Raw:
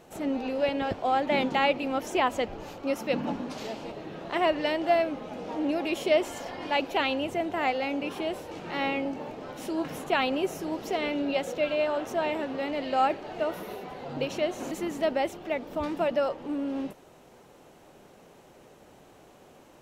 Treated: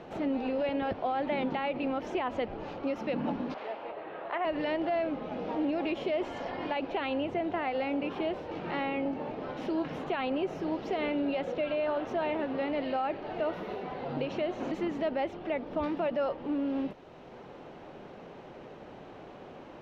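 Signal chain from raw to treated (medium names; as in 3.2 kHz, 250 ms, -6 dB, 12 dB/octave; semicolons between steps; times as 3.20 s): 3.54–4.45 s: three-band isolator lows -22 dB, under 450 Hz, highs -17 dB, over 2.8 kHz; peak limiter -21.5 dBFS, peak gain reduction 9 dB; distance through air 260 m; three bands compressed up and down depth 40%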